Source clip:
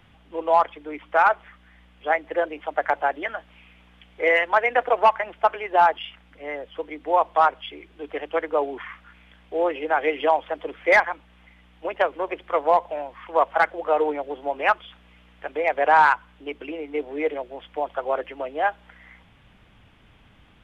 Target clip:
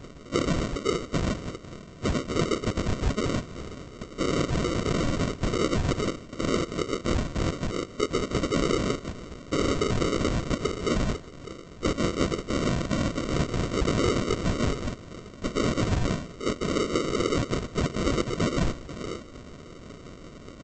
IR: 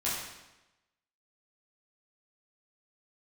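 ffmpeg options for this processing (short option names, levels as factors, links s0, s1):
-filter_complex "[0:a]asplit=2[s0][s1];[s1]highpass=f=720:p=1,volume=44.7,asoftclip=type=tanh:threshold=0.422[s2];[s0][s2]amix=inputs=2:normalize=0,lowpass=f=3400:p=1,volume=0.501,alimiter=limit=0.251:level=0:latency=1:release=37,afftfilt=real='hypot(re,im)*cos(2*PI*random(0))':imag='hypot(re,im)*sin(2*PI*random(1))':win_size=512:overlap=0.75,aresample=16000,acrusher=samples=19:mix=1:aa=0.000001,aresample=44100,aecho=1:1:150:0.0794,volume=0.708"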